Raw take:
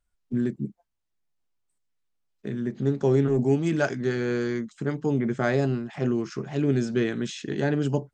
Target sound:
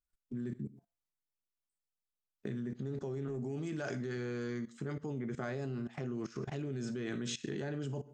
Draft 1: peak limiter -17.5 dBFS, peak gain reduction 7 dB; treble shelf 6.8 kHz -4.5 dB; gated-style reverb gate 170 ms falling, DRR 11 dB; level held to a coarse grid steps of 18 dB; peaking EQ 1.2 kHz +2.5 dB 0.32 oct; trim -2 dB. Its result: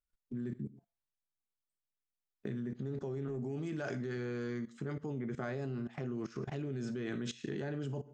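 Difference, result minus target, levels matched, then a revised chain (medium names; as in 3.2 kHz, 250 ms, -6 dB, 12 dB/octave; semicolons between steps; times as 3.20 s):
8 kHz band -6.0 dB
peak limiter -17.5 dBFS, peak gain reduction 7 dB; treble shelf 6.8 kHz +5 dB; gated-style reverb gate 170 ms falling, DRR 11 dB; level held to a coarse grid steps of 18 dB; peaking EQ 1.2 kHz +2.5 dB 0.32 oct; trim -2 dB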